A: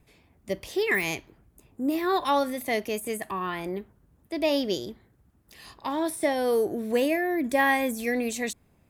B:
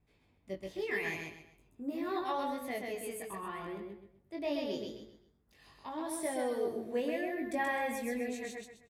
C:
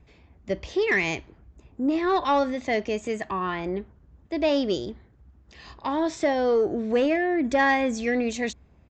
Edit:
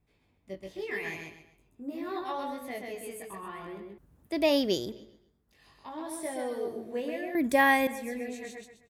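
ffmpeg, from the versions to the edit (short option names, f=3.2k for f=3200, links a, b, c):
-filter_complex "[0:a]asplit=2[a][b];[1:a]asplit=3[c][d][e];[c]atrim=end=3.982[f];[a]atrim=start=3.978:end=4.922[g];[d]atrim=start=4.918:end=7.352[h];[b]atrim=start=7.348:end=7.872[i];[e]atrim=start=7.868[j];[f][g]acrossfade=d=0.004:c1=hsin:c2=hsin[k];[k][h]acrossfade=d=0.004:c1=hsin:c2=hsin[l];[l][i]acrossfade=d=0.004:c1=hsin:c2=hsin[m];[m][j]acrossfade=d=0.004:c1=hsin:c2=hsin"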